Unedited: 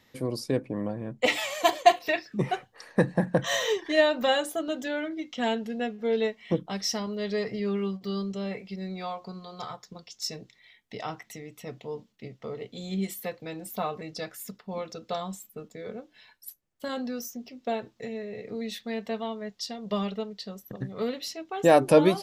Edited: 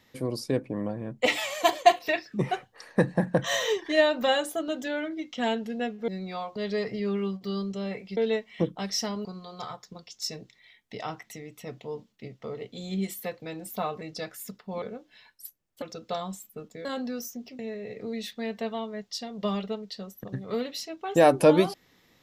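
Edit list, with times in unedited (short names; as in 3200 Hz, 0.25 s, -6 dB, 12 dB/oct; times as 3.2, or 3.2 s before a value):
6.08–7.16 swap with 8.77–9.25
15.85–16.85 move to 14.82
17.59–18.07 cut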